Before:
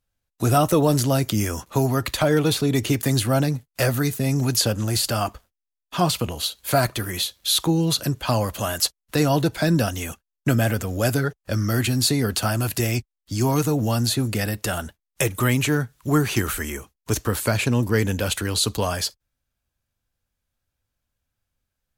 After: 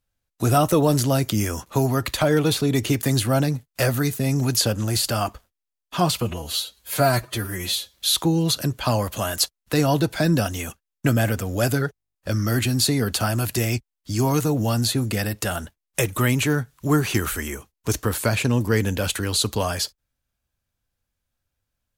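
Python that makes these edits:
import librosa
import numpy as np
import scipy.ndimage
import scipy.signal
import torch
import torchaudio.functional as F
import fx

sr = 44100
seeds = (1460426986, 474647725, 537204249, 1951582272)

y = fx.edit(x, sr, fx.stretch_span(start_s=6.21, length_s=1.16, factor=1.5),
    fx.stutter(start_s=11.36, slice_s=0.02, count=11), tone=tone)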